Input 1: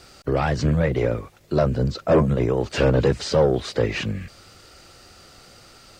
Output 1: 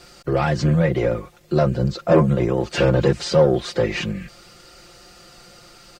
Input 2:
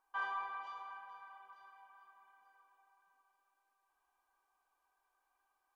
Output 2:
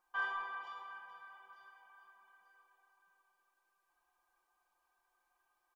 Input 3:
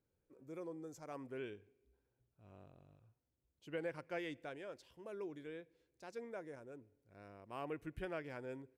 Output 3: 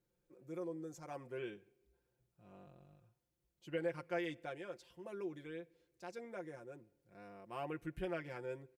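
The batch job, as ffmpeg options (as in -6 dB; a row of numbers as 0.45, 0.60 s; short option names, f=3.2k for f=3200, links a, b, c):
-af "aecho=1:1:5.7:0.72"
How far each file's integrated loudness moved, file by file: +2.0, +1.0, +2.5 LU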